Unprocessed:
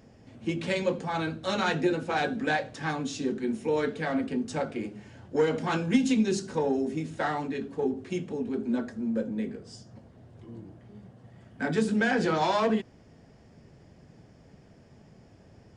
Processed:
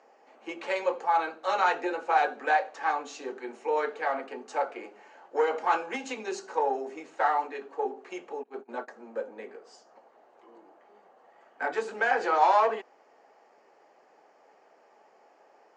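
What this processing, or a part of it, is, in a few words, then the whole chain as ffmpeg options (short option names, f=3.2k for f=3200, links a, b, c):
phone speaker on a table: -filter_complex "[0:a]asettb=1/sr,asplit=3[a][b][c];[a]atrim=end=8.434[d];[b]atrim=start=8.43:end=8.88,asetpts=PTS-STARTPTS,afade=t=in:d=0.004:c=qsin,afade=t=out:st=0.446:d=0.004:c=qsin,agate=range=-22dB:threshold=-30dB:ratio=16:detection=peak[e];[c]atrim=start=8.876[f];[d][e]acrossfade=d=0.004:c1=hsin:c2=qsin[g];[g][f]acrossfade=d=0.004:c1=qsin:c2=hsin,highpass=f=430:w=0.5412,highpass=f=430:w=1.3066,equalizer=f=830:t=q:w=4:g=9,equalizer=f=1.2k:t=q:w=4:g=6,equalizer=f=3.5k:t=q:w=4:g=-9,equalizer=f=5.2k:t=q:w=4:g=-8,lowpass=f=6.5k:w=0.5412,lowpass=f=6.5k:w=1.3066"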